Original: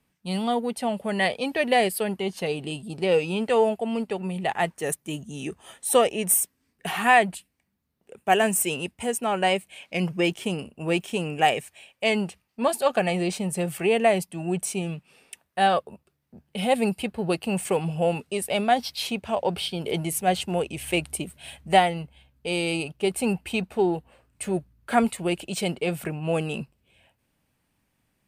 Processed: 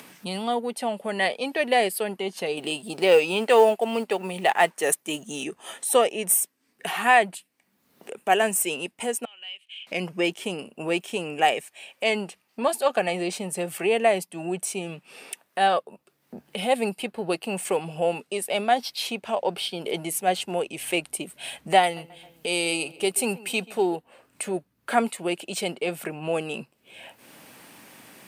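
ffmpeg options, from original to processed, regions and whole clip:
-filter_complex "[0:a]asettb=1/sr,asplit=3[a][b][c];[a]atrim=end=2.574[d];[b]atrim=start=2.57:end=5.44,asetpts=PTS-STARTPTS,afade=t=in:d=0.004:c=qsin,afade=t=out:st=2.866:d=0.004:c=qsin,lowshelf=f=240:g=-9,acontrast=67,acrusher=bits=8:mode=log:mix=0:aa=0.000001[e];[c]atrim=start=5.436[f];[d][e]acrossfade=d=0.004:c1=hsin:c2=qsin[g];[g][f]acrossfade=d=0.004:c1=qsin:c2=hsin,asettb=1/sr,asplit=3[h][i][j];[h]atrim=end=9.254[k];[i]atrim=start=9.25:end=9.87,asetpts=PTS-STARTPTS,afade=t=in:d=0.004:c=qsin,afade=t=out:st=0.616:d=0.004:c=qsin,bandpass=f=3k:t=q:w=8.6,acompressor=threshold=-52dB:ratio=2:attack=3.2:release=140:knee=1:detection=peak[l];[j]atrim=start=9.866[m];[k][l]acrossfade=d=0.004:c1=hsin:c2=qsin[n];[n][m]acrossfade=d=0.004:c1=qsin:c2=hsin,asettb=1/sr,asplit=3[o][p][q];[o]atrim=end=21.834[r];[p]atrim=start=21.83:end=23.96,asetpts=PTS-STARTPTS,afade=t=in:d=0.004:c=qsin,afade=t=out:st=2.126:d=0.004:c=qsin,highshelf=f=4.3k:g=9.5,asplit=2[s][t];[t]adelay=134,lowpass=f=2.7k:p=1,volume=-19.5dB,asplit=2[u][v];[v]adelay=134,lowpass=f=2.7k:p=1,volume=0.41,asplit=2[w][x];[x]adelay=134,lowpass=f=2.7k:p=1,volume=0.41[y];[s][u][w][y]amix=inputs=4:normalize=0,atrim=end_sample=93933[z];[q]atrim=start=23.956[aa];[r][z]acrossfade=d=0.004:c1=hsin:c2=qsin[ab];[ab][aa]acrossfade=d=0.004:c1=qsin:c2=hsin,highpass=270,acompressor=mode=upward:threshold=-27dB:ratio=2.5"

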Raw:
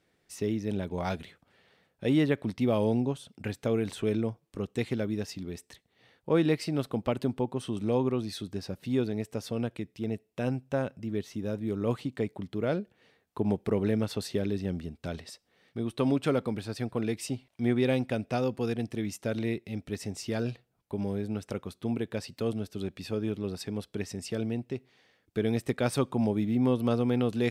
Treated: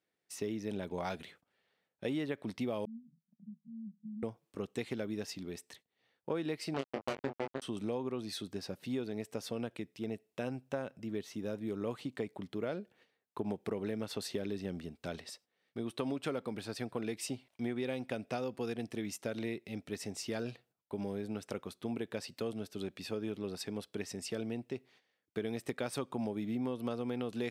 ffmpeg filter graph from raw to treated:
-filter_complex "[0:a]asettb=1/sr,asplit=3[a][b][c];[a]atrim=end=2.854[d];[b]atrim=start=2.85:end=4.23,asetpts=PTS-STARTPTS,afade=t=in:d=0.004:c=qsin,afade=t=out:st=1.376:d=0.004:c=qsin,acompressor=threshold=-31dB:ratio=2:attack=3.2:release=140:knee=1:detection=peak,asuperpass=centerf=190:order=12:qfactor=2.7[e];[c]atrim=start=4.226[f];[d][e]acrossfade=d=0.004:c1=hsin:c2=qsin[g];[g][f]acrossfade=d=0.004:c1=qsin:c2=hsin,asettb=1/sr,asplit=3[h][i][j];[h]atrim=end=6.744[k];[i]atrim=start=6.74:end=7.62,asetpts=PTS-STARTPTS,afade=t=in:d=0.004:c=qsin,afade=t=out:st=0.876:d=0.004:c=qsin,lowpass=f=4.6k:w=0.5412,lowpass=f=4.6k:w=1.3066,acrusher=bits=3:mix=0:aa=0.5,asplit=2[l][m];[m]adelay=22,volume=-3.5dB[n];[l][n]amix=inputs=2:normalize=0,atrim=end_sample=38808[o];[j]atrim=start=7.616[p];[k][o]acrossfade=d=0.004:c1=hsin:c2=qsin[q];[q][p]acrossfade=d=0.004:c1=qsin:c2=hsin,agate=range=-12dB:threshold=-58dB:ratio=16:detection=peak,highpass=f=260:p=1,acompressor=threshold=-31dB:ratio=6,volume=-1.5dB"

